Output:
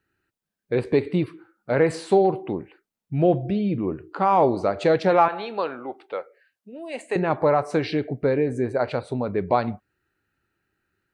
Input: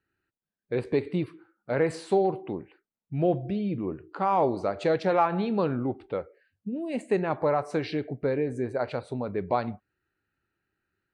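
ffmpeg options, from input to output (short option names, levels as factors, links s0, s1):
-filter_complex "[0:a]asettb=1/sr,asplit=3[s0][s1][s2];[s0]atrim=end=5.284[s3];[s1]atrim=start=5.28:end=7.16,asetpts=PTS-STARTPTS,afade=t=in:d=0.004:c=qsin,afade=t=out:st=1.876:d=0.004:c=qsin,highpass=610[s4];[s2]atrim=start=7.156[s5];[s3][s4]acrossfade=d=0.004:c1=hsin:c2=qsin[s6];[s6][s5]acrossfade=d=0.004:c1=qsin:c2=hsin,volume=1.88"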